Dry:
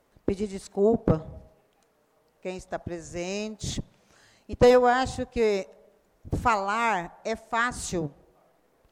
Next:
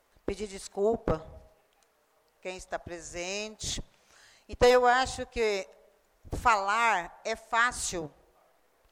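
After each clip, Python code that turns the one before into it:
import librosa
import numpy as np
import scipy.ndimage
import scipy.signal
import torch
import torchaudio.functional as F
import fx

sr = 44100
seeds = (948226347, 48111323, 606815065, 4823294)

y = fx.peak_eq(x, sr, hz=170.0, db=-13.0, octaves=2.9)
y = y * librosa.db_to_amplitude(2.0)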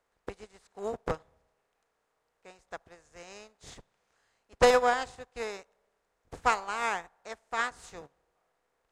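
y = fx.bin_compress(x, sr, power=0.6)
y = fx.upward_expand(y, sr, threshold_db=-37.0, expansion=2.5)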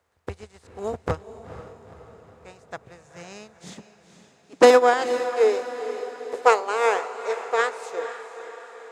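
y = fx.filter_sweep_highpass(x, sr, from_hz=81.0, to_hz=450.0, start_s=1.98, end_s=5.54, q=6.0)
y = fx.echo_diffused(y, sr, ms=475, feedback_pct=54, wet_db=-11.5)
y = y * librosa.db_to_amplitude(5.0)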